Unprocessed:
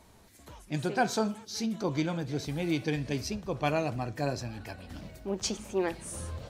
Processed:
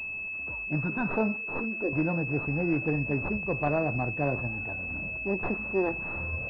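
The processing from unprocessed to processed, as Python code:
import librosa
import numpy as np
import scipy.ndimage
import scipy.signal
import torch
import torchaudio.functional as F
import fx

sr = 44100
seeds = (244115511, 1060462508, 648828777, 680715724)

p1 = fx.tracing_dist(x, sr, depth_ms=0.13)
p2 = fx.spec_box(p1, sr, start_s=0.8, length_s=0.3, low_hz=330.0, high_hz=900.0, gain_db=-14)
p3 = fx.level_steps(p2, sr, step_db=12)
p4 = p2 + (p3 * 10.0 ** (-1.5 / 20.0))
p5 = fx.fixed_phaser(p4, sr, hz=390.0, stages=4, at=(1.36, 1.93))
y = fx.pwm(p5, sr, carrier_hz=2600.0)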